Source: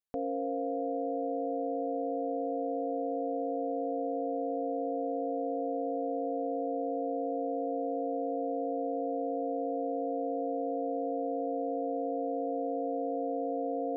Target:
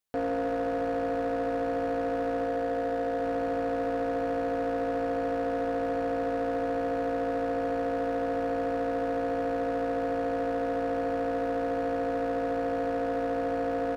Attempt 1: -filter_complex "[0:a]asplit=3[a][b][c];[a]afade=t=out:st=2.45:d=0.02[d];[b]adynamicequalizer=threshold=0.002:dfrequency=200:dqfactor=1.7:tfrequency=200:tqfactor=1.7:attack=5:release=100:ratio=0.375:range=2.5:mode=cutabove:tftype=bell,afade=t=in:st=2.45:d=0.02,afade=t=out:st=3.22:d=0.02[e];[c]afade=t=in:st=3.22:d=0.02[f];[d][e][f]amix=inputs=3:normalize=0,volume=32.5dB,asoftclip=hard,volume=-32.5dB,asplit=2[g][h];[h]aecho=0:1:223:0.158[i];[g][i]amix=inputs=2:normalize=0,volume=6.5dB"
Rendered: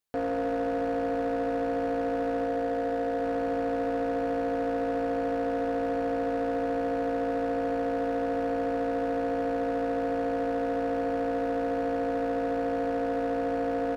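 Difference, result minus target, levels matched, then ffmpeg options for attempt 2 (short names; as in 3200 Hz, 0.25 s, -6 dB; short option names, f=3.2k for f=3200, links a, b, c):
echo 0.111 s early
-filter_complex "[0:a]asplit=3[a][b][c];[a]afade=t=out:st=2.45:d=0.02[d];[b]adynamicequalizer=threshold=0.002:dfrequency=200:dqfactor=1.7:tfrequency=200:tqfactor=1.7:attack=5:release=100:ratio=0.375:range=2.5:mode=cutabove:tftype=bell,afade=t=in:st=2.45:d=0.02,afade=t=out:st=3.22:d=0.02[e];[c]afade=t=in:st=3.22:d=0.02[f];[d][e][f]amix=inputs=3:normalize=0,volume=32.5dB,asoftclip=hard,volume=-32.5dB,asplit=2[g][h];[h]aecho=0:1:334:0.158[i];[g][i]amix=inputs=2:normalize=0,volume=6.5dB"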